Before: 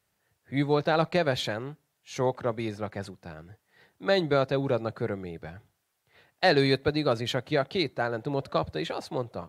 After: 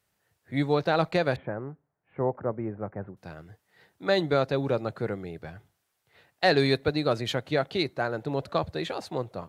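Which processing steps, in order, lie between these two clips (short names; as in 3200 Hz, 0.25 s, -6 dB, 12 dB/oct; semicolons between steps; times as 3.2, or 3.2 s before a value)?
1.36–3.17 Bessel low-pass 1100 Hz, order 8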